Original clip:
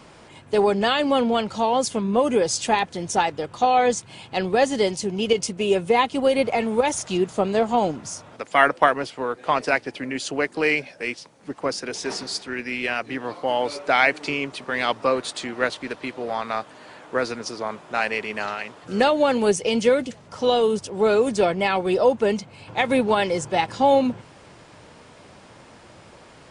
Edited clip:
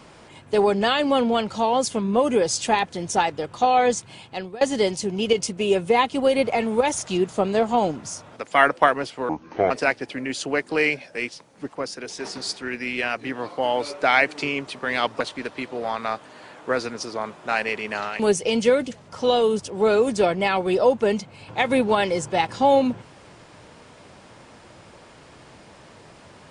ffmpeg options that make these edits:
-filter_complex "[0:a]asplit=8[a][b][c][d][e][f][g][h];[a]atrim=end=4.61,asetpts=PTS-STARTPTS,afade=t=out:st=4.09:d=0.52:silence=0.0749894[i];[b]atrim=start=4.61:end=9.294,asetpts=PTS-STARTPTS,afade=t=in:d=0.004:c=hsin:silence=0.0749894[j];[c]atrim=start=9.29:end=9.56,asetpts=PTS-STARTPTS,asetrate=28665,aresample=44100,atrim=end_sample=18318,asetpts=PTS-STARTPTS[k];[d]atrim=start=9.556:end=11.582[l];[e]atrim=start=11.578:end=12.212,asetpts=PTS-STARTPTS,volume=-4dB[m];[f]atrim=start=12.208:end=15.062[n];[g]atrim=start=15.658:end=18.652[o];[h]atrim=start=19.388[p];[i][j]concat=n=2:v=0:a=1[q];[q][k]acrossfade=d=0.004:c1=hsin:c2=hsin[r];[r][l]acrossfade=d=0.004:c1=hsin:c2=hsin[s];[s][m]acrossfade=d=0.004:c1=hsin:c2=hsin[t];[t][n]acrossfade=d=0.004:c1=hsin:c2=hsin[u];[u][o]acrossfade=d=0.004:c1=hsin:c2=hsin[v];[v][p]acrossfade=d=0.004:c1=hsin:c2=hsin"

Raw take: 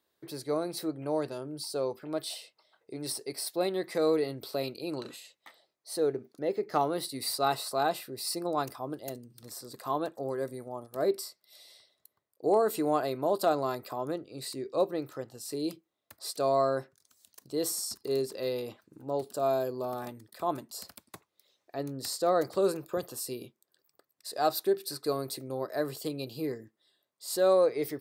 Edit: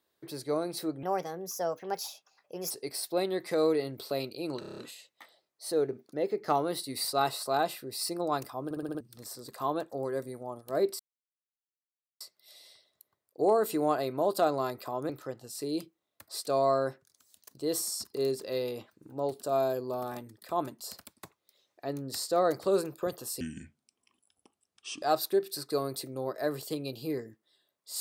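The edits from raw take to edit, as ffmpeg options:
-filter_complex "[0:a]asplit=19[a][b][c][d][e][f][g][h][i][j][k][l][m][n][o][p][q][r][s];[a]atrim=end=1.034[t];[b]atrim=start=1.03:end=3.14,asetpts=PTS-STARTPTS,asetrate=55566,aresample=44100[u];[c]atrim=start=3.136:end=5.062[v];[d]atrim=start=5.028:end=5.062[w];[e]atrim=start=5.028:end=5.062[x];[f]atrim=start=5.028:end=5.062[y];[g]atrim=start=5.028:end=5.062[z];[h]atrim=start=5.028:end=5.062[aa];[i]atrim=start=5.028:end=8.962[ab];[j]atrim=start=8.898:end=8.962[ac];[k]atrim=start=8.898:end=8.962[ad];[l]atrim=start=8.898:end=8.962[ae];[m]atrim=start=8.898:end=8.962[af];[n]atrim=start=8.898:end=8.962[ag];[o]atrim=start=9.258:end=11.25,asetpts=PTS-STARTPTS,afade=t=out:st=1.988:d=0.004:c=hsin,apad=pad_dur=1.21[ah];[p]atrim=start=11.25:end=14.142,asetpts=PTS-STARTPTS,afade=t=in:d=0.004:c=hsin[ai];[q]atrim=start=14.998:end=23.314[aj];[r]atrim=start=23.31:end=24.36,asetpts=PTS-STARTPTS,asetrate=28665,aresample=44100,atrim=end_sample=71238,asetpts=PTS-STARTPTS[ak];[s]atrim=start=24.356[al];[t][u]acrossfade=d=0.004:c1=hsin:c2=hsin[am];[am][v]acrossfade=d=0.004:c1=hsin:c2=hsin[an];[an][w]acrossfade=d=0.004:c1=hsin:c2=hsin[ao];[ao][x]acrossfade=d=0.004:c1=hsin:c2=hsin[ap];[ap][y]acrossfade=d=0.004:c1=hsin:c2=hsin[aq];[aq][z]acrossfade=d=0.004:c1=hsin:c2=hsin[ar];[ar][aa]acrossfade=d=0.004:c1=hsin:c2=hsin[as];[as][ab]acrossfade=d=0.004:c1=hsin:c2=hsin[at];[at][ac]acrossfade=d=0.004:c1=hsin:c2=hsin[au];[au][ad]acrossfade=d=0.004:c1=hsin:c2=hsin[av];[av][ae]acrossfade=d=0.004:c1=hsin:c2=hsin[aw];[aw][af]acrossfade=d=0.004:c1=hsin:c2=hsin[ax];[ax][ag]acrossfade=d=0.004:c1=hsin:c2=hsin[ay];[ah][ai]concat=n=2:v=0:a=1[az];[ay][az]acrossfade=d=0.004:c1=hsin:c2=hsin[ba];[ba][aj]acrossfade=d=0.004:c1=hsin:c2=hsin[bb];[bb][ak]acrossfade=d=0.004:c1=hsin:c2=hsin[bc];[bc][al]acrossfade=d=0.004:c1=hsin:c2=hsin"

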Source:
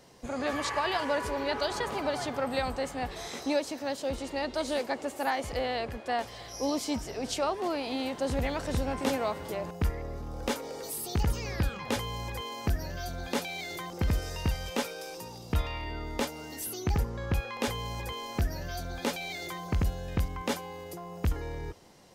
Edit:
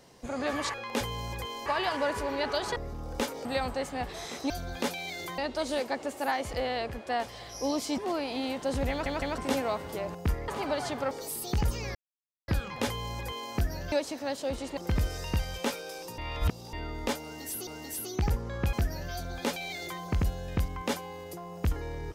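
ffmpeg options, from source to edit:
-filter_complex "[0:a]asplit=20[a][b][c][d][e][f][g][h][i][j][k][l][m][n][o][p][q][r][s][t];[a]atrim=end=0.742[u];[b]atrim=start=17.408:end=18.332[v];[c]atrim=start=0.738:end=1.842[w];[d]atrim=start=10.038:end=10.732[x];[e]atrim=start=2.468:end=3.522[y];[f]atrim=start=13.008:end=13.892[z];[g]atrim=start=4.368:end=6.972[aa];[h]atrim=start=7.538:end=8.622[ab];[i]atrim=start=8.458:end=8.622[ac];[j]atrim=start=8.458:end=8.622[ad];[k]atrim=start=8.938:end=10.042[ae];[l]atrim=start=1.838:end=2.472[af];[m]atrim=start=10.728:end=11.57,asetpts=PTS-STARTPTS,afade=t=out:st=0.838:d=0.004:c=hsin,apad=pad_dur=0.53[ag];[n]atrim=start=11.57:end=13.012,asetpts=PTS-STARTPTS,afade=t=in:d=0.004:c=hsin[ah];[o]atrim=start=3.518:end=4.372[ai];[p]atrim=start=13.888:end=15.302[aj];[q]atrim=start=15.298:end=15.852,asetpts=PTS-STARTPTS,areverse[ak];[r]atrim=start=15.848:end=16.792[al];[s]atrim=start=16.348:end=17.412[am];[t]atrim=start=18.328[an];[u][v]acrossfade=d=0.004:c1=hsin:c2=hsin[ao];[ao][w]acrossfade=d=0.004:c1=hsin:c2=hsin[ap];[ap][x]acrossfade=d=0.004:c1=hsin:c2=hsin[aq];[aq][y]acrossfade=d=0.004:c1=hsin:c2=hsin[ar];[ar][z]acrossfade=d=0.004:c1=hsin:c2=hsin[as];[as][aa]acrossfade=d=0.004:c1=hsin:c2=hsin[at];[at][ab]acrossfade=d=0.004:c1=hsin:c2=hsin[au];[au][ac]acrossfade=d=0.004:c1=hsin:c2=hsin[av];[av][ad]acrossfade=d=0.004:c1=hsin:c2=hsin[aw];[aw][ae]acrossfade=d=0.004:c1=hsin:c2=hsin[ax];[ax][af]acrossfade=d=0.004:c1=hsin:c2=hsin[ay];[ag][ah]concat=n=2:v=0:a=1[az];[ay][az]acrossfade=d=0.004:c1=hsin:c2=hsin[ba];[ba][ai]acrossfade=d=0.004:c1=hsin:c2=hsin[bb];[bb][aj]acrossfade=d=0.004:c1=hsin:c2=hsin[bc];[bc][ak]acrossfade=d=0.004:c1=hsin:c2=hsin[bd];[bd][al]acrossfade=d=0.004:c1=hsin:c2=hsin[be];[be][am]acrossfade=d=0.004:c1=hsin:c2=hsin[bf];[bf][an]acrossfade=d=0.004:c1=hsin:c2=hsin"

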